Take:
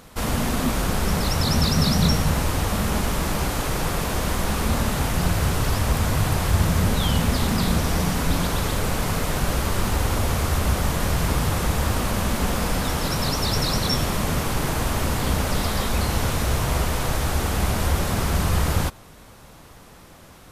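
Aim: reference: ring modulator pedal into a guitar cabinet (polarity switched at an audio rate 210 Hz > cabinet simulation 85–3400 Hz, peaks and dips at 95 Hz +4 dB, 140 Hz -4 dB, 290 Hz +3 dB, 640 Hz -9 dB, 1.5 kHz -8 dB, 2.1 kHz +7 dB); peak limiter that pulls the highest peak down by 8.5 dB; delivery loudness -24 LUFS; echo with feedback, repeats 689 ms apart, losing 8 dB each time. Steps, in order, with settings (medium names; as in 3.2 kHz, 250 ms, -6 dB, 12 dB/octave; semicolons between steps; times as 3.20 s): peak limiter -15.5 dBFS; feedback delay 689 ms, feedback 40%, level -8 dB; polarity switched at an audio rate 210 Hz; cabinet simulation 85–3400 Hz, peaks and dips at 95 Hz +4 dB, 140 Hz -4 dB, 290 Hz +3 dB, 640 Hz -9 dB, 1.5 kHz -8 dB, 2.1 kHz +7 dB; trim +1 dB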